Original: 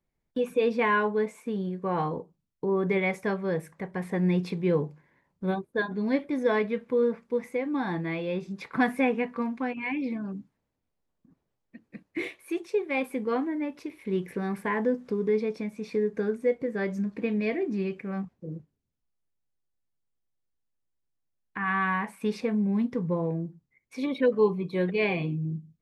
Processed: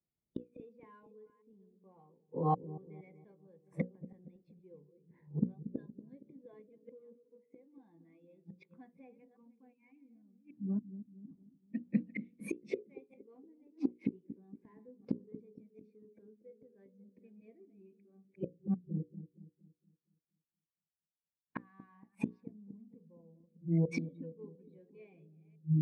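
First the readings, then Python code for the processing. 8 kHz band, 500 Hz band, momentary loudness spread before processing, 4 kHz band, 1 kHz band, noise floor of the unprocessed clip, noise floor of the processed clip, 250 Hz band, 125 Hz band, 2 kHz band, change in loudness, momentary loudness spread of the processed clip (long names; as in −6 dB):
can't be measured, −20.0 dB, 10 LU, below −20 dB, −13.5 dB, −80 dBFS, below −85 dBFS, −11.0 dB, −6.0 dB, −23.0 dB, −11.0 dB, 23 LU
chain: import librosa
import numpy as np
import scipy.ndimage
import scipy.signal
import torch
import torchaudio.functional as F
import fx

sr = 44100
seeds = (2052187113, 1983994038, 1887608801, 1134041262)

p1 = fx.reverse_delay(x, sr, ms=284, wet_db=-12)
p2 = scipy.signal.sosfilt(scipy.signal.butter(2, 53.0, 'highpass', fs=sr, output='sos'), p1)
p3 = np.clip(10.0 ** (31.0 / 20.0) * p2, -1.0, 1.0) / 10.0 ** (31.0 / 20.0)
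p4 = p2 + (p3 * 10.0 ** (-6.0 / 20.0))
p5 = scipy.signal.sosfilt(scipy.signal.butter(2, 8500.0, 'lowpass', fs=sr, output='sos'), p4)
p6 = fx.low_shelf(p5, sr, hz=110.0, db=-3.5)
p7 = fx.gate_flip(p6, sr, shuts_db=-27.0, range_db=-34)
p8 = fx.peak_eq(p7, sr, hz=1500.0, db=-6.5, octaves=1.0)
p9 = fx.hum_notches(p8, sr, base_hz=60, count=9)
p10 = fx.echo_wet_lowpass(p9, sr, ms=233, feedback_pct=55, hz=470.0, wet_db=-8)
p11 = fx.spectral_expand(p10, sr, expansion=1.5)
y = p11 * 10.0 ** (8.5 / 20.0)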